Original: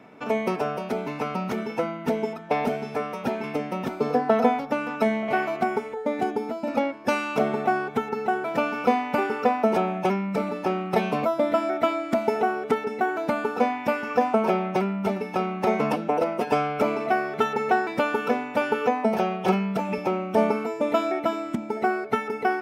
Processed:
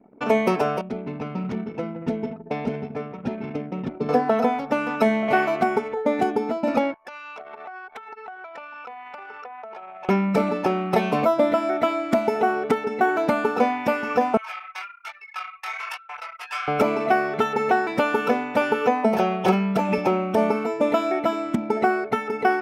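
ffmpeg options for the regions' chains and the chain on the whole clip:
ffmpeg -i in.wav -filter_complex "[0:a]asettb=1/sr,asplit=3[link_01][link_02][link_03];[link_01]atrim=end=0.814[link_04];[link_02]atrim=start=0.81:end=4.09,asetpts=PTS-STARTPTS,afade=type=in:duration=0.004:curve=qsin,afade=type=out:start_time=3.276:duration=0.004:curve=qsin,lowpass=frequency=3000:poles=1,equalizer=frequency=960:width=0.36:gain=-13,aecho=1:1:168|231:0.282|0.188,atrim=end_sample=144648[link_05];[link_03]atrim=start=4.086[link_06];[link_04][link_05]acrossfade=duration=0.004:curve1=hsin:curve2=qsin[link_07];[link_07][link_06]acrossfade=duration=0.004:curve1=qsin:curve2=hsin,asettb=1/sr,asplit=3[link_08][link_09][link_10];[link_08]atrim=end=6.944[link_11];[link_09]atrim=start=6.94:end=10.09,asetpts=PTS-STARTPTS,afade=type=in:duration=0.004:curve=qsin,afade=type=out:start_time=3.146:duration=0.004:curve=qsin,highpass=860,acompressor=threshold=-39dB:ratio=16:attack=3.2:release=140:knee=1:detection=peak[link_12];[link_10]atrim=start=10.086[link_13];[link_11][link_12]acrossfade=duration=0.004:curve1=hsin:curve2=qsin[link_14];[link_14][link_13]acrossfade=duration=0.004:curve1=qsin:curve2=hsin,asettb=1/sr,asplit=3[link_15][link_16][link_17];[link_15]atrim=end=14.374[link_18];[link_16]atrim=start=14.37:end=16.68,asetpts=PTS-STARTPTS,afade=type=in:duration=0.004:curve=qsin,afade=type=out:start_time=2.306:duration=0.004:curve=qsin,highpass=frequency=1300:width=0.5412,highpass=frequency=1300:width=1.3066,flanger=delay=18.5:depth=5.7:speed=1.2[link_19];[link_17]atrim=start=16.676[link_20];[link_18][link_19]acrossfade=duration=0.004:curve1=hsin:curve2=qsin[link_21];[link_21][link_20]acrossfade=duration=0.004:curve1=qsin:curve2=hsin,anlmdn=0.158,alimiter=limit=-14.5dB:level=0:latency=1:release=487,volume=6dB" out.wav

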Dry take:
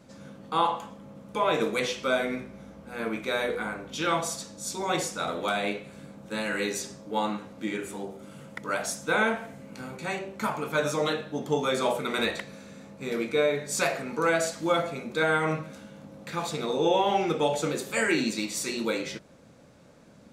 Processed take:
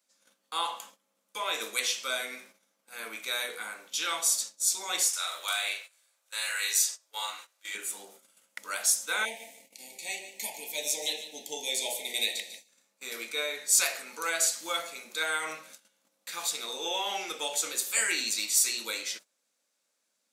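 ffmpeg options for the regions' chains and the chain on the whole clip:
ffmpeg -i in.wav -filter_complex "[0:a]asettb=1/sr,asplit=3[link_01][link_02][link_03];[link_01]atrim=end=5.094[link_04];[link_02]atrim=start=5.09:end=7.75,asetpts=PTS-STARTPTS,afade=type=in:duration=0.004:curve=qsin,afade=type=out:start_time=2.656:duration=0.004:curve=qsin,highpass=810,asplit=2[link_05][link_06];[link_06]adelay=42,volume=-2dB[link_07];[link_05][link_07]amix=inputs=2:normalize=0,atrim=end_sample=117306[link_08];[link_03]atrim=start=7.746[link_09];[link_04][link_08]acrossfade=duration=0.004:curve1=hsin:curve2=qsin[link_10];[link_10][link_09]acrossfade=duration=0.004:curve1=qsin:curve2=hsin,asettb=1/sr,asplit=3[link_11][link_12][link_13];[link_11]atrim=end=9.254[link_14];[link_12]atrim=start=9.25:end=12.69,asetpts=PTS-STARTPTS,afade=type=in:duration=0.004:curve=qsin,afade=type=out:start_time=3.436:duration=0.004:curve=qsin,asuperstop=centerf=1300:order=8:qfactor=1.2,aecho=1:1:147|294|441|588:0.237|0.0854|0.0307|0.0111,atrim=end_sample=151704[link_15];[link_13]atrim=start=12.686[link_16];[link_14][link_15]acrossfade=duration=0.004:curve1=hsin:curve2=qsin[link_17];[link_17][link_16]acrossfade=duration=0.004:curve1=qsin:curve2=hsin,agate=range=-17dB:threshold=-42dB:ratio=16:detection=peak,highpass=frequency=190:width=0.5412,highpass=frequency=190:width=1.3066,aderivative,volume=9dB" out.wav

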